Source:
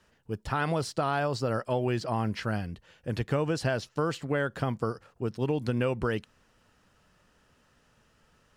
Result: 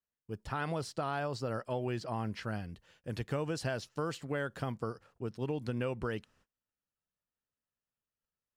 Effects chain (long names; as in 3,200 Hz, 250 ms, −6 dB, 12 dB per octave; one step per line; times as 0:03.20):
noise gate −59 dBFS, range −27 dB
0:02.69–0:04.72: high-shelf EQ 4,900 Hz +5 dB
level −7 dB